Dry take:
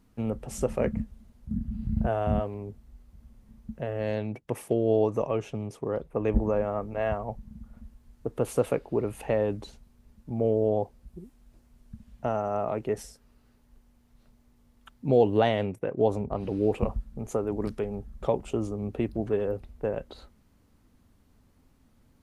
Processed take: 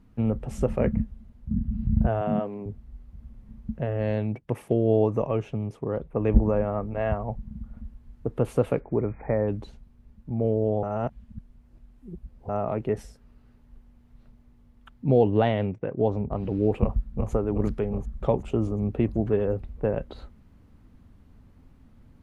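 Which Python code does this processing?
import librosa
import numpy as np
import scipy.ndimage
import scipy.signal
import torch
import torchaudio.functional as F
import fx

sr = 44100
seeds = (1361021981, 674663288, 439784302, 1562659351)

y = fx.highpass(x, sr, hz=160.0, slope=24, at=(2.21, 2.66))
y = fx.brickwall_lowpass(y, sr, high_hz=2500.0, at=(8.79, 9.47), fade=0.02)
y = fx.lowpass(y, sr, hz=5800.0, slope=24, at=(15.32, 16.28))
y = fx.echo_throw(y, sr, start_s=16.81, length_s=0.5, ms=370, feedback_pct=60, wet_db=-6.5)
y = fx.edit(y, sr, fx.reverse_span(start_s=10.83, length_s=1.66), tone=tone)
y = fx.bass_treble(y, sr, bass_db=6, treble_db=-10)
y = fx.rider(y, sr, range_db=4, speed_s=2.0)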